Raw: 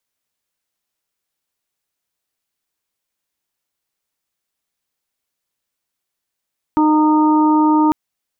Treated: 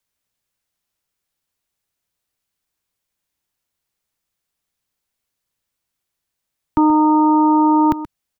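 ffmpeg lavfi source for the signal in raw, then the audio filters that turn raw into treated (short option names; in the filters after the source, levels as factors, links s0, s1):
-f lavfi -i "aevalsrc='0.266*sin(2*PI*307*t)+0.0266*sin(2*PI*614*t)+0.168*sin(2*PI*921*t)+0.0631*sin(2*PI*1228*t)':d=1.15:s=44100"
-filter_complex "[0:a]acrossover=split=160|680[s0][s1][s2];[s0]acontrast=80[s3];[s3][s1][s2]amix=inputs=3:normalize=0,asplit=2[s4][s5];[s5]adelay=128.3,volume=0.2,highshelf=f=4000:g=-2.89[s6];[s4][s6]amix=inputs=2:normalize=0"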